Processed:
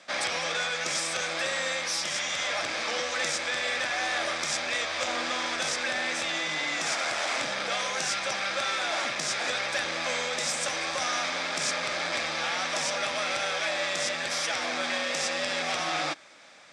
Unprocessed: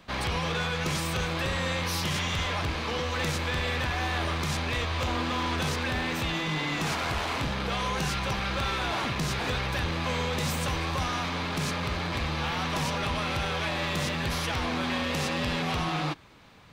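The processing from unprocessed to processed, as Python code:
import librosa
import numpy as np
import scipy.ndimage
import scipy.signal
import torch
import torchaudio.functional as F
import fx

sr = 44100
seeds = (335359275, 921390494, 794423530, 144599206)

y = fx.peak_eq(x, sr, hz=6300.0, db=12.0, octaves=2.7)
y = fx.rider(y, sr, range_db=10, speed_s=0.5)
y = fx.cabinet(y, sr, low_hz=410.0, low_slope=12, high_hz=8400.0, hz=(420.0, 590.0, 1000.0, 2900.0, 4200.0, 6500.0), db=(-7, 6, -8, -9, -9, -4))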